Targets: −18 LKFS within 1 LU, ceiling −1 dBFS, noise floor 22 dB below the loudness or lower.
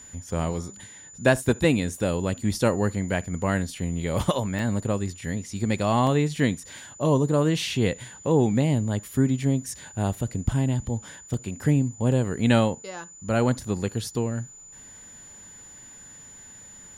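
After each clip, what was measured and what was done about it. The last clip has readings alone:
number of dropouts 5; longest dropout 1.3 ms; interfering tone 7,000 Hz; level of the tone −44 dBFS; integrated loudness −25.5 LKFS; sample peak −6.5 dBFS; target loudness −18.0 LKFS
→ repair the gap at 0:01.96/0:04.59/0:06.07/0:11.34/0:12.12, 1.3 ms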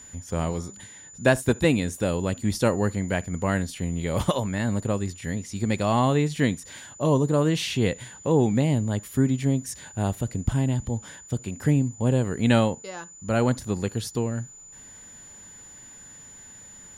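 number of dropouts 0; interfering tone 7,000 Hz; level of the tone −44 dBFS
→ notch filter 7,000 Hz, Q 30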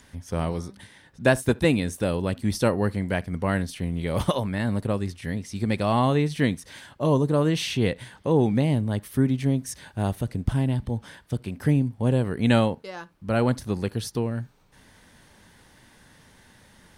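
interfering tone none found; integrated loudness −25.5 LKFS; sample peak −6.5 dBFS; target loudness −18.0 LKFS
→ level +7.5 dB
brickwall limiter −1 dBFS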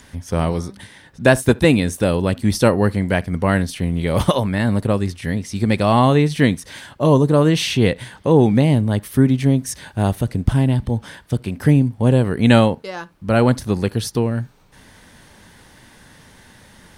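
integrated loudness −18.0 LKFS; sample peak −1.0 dBFS; background noise floor −48 dBFS

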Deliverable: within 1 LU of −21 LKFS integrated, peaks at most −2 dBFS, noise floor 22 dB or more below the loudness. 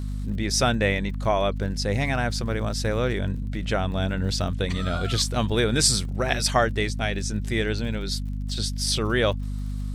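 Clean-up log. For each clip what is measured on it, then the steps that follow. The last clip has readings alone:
crackle rate 57 per second; mains hum 50 Hz; hum harmonics up to 250 Hz; level of the hum −27 dBFS; integrated loudness −25.0 LKFS; sample peak −5.0 dBFS; target loudness −21.0 LKFS
→ click removal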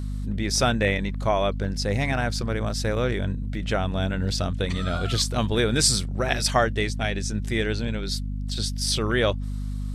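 crackle rate 0.10 per second; mains hum 50 Hz; hum harmonics up to 250 Hz; level of the hum −27 dBFS
→ mains-hum notches 50/100/150/200/250 Hz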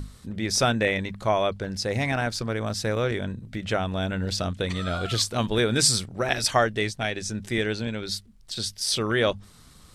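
mains hum none found; integrated loudness −26.0 LKFS; sample peak −6.0 dBFS; target loudness −21.0 LKFS
→ level +5 dB
brickwall limiter −2 dBFS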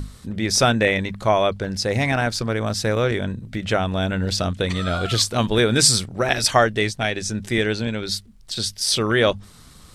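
integrated loudness −21.0 LKFS; sample peak −2.0 dBFS; background noise floor −47 dBFS

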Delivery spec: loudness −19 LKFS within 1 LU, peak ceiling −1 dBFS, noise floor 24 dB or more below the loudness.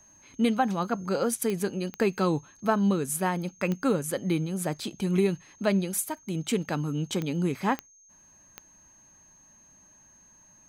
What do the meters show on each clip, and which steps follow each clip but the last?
number of clicks 6; interfering tone 6,400 Hz; level of the tone −55 dBFS; integrated loudness −28.0 LKFS; sample peak −12.0 dBFS; target loudness −19.0 LKFS
→ click removal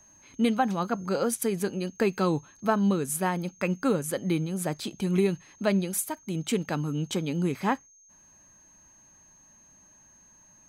number of clicks 0; interfering tone 6,400 Hz; level of the tone −55 dBFS
→ notch filter 6,400 Hz, Q 30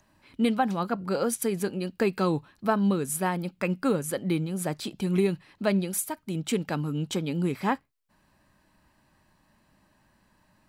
interfering tone none found; integrated loudness −28.0 LKFS; sample peak −12.0 dBFS; target loudness −19.0 LKFS
→ level +9 dB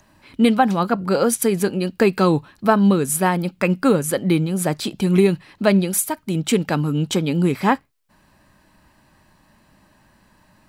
integrated loudness −19.0 LKFS; sample peak −3.0 dBFS; background noise floor −58 dBFS

